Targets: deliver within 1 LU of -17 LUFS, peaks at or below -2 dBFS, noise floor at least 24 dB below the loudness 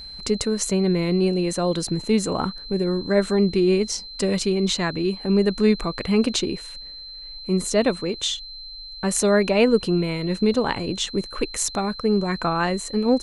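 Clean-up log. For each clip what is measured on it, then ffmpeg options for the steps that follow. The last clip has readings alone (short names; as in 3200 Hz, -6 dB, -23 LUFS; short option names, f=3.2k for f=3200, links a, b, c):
steady tone 4100 Hz; tone level -36 dBFS; loudness -22.5 LUFS; peak -5.5 dBFS; loudness target -17.0 LUFS
-> -af "bandreject=f=4.1k:w=30"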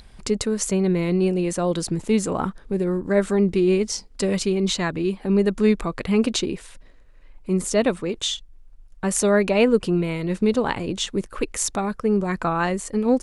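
steady tone none; loudness -22.5 LUFS; peak -5.5 dBFS; loudness target -17.0 LUFS
-> -af "volume=5.5dB,alimiter=limit=-2dB:level=0:latency=1"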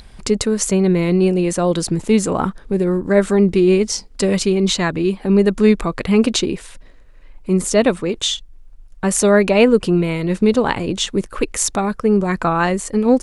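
loudness -17.0 LUFS; peak -2.0 dBFS; noise floor -42 dBFS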